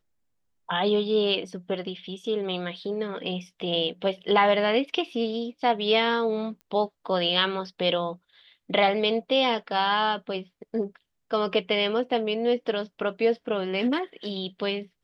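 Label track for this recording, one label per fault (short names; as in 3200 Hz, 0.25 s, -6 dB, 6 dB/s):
6.610000	6.610000	pop -34 dBFS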